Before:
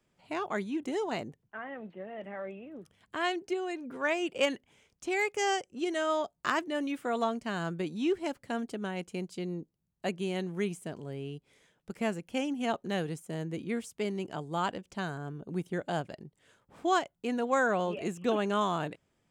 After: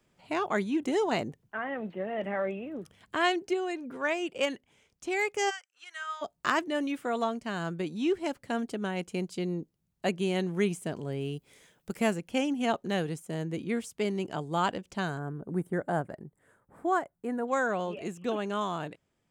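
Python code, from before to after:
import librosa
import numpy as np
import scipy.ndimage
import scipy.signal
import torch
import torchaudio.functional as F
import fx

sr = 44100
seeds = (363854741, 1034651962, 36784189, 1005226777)

y = fx.ladder_highpass(x, sr, hz=1200.0, resonance_pct=50, at=(5.49, 6.21), fade=0.02)
y = fx.high_shelf(y, sr, hz=9200.0, db=11.5, at=(11.21, 12.13))
y = fx.band_shelf(y, sr, hz=4000.0, db=-15.5, octaves=1.7, at=(15.19, 17.48))
y = fx.rider(y, sr, range_db=10, speed_s=2.0)
y = F.gain(torch.from_numpy(y), 1.0).numpy()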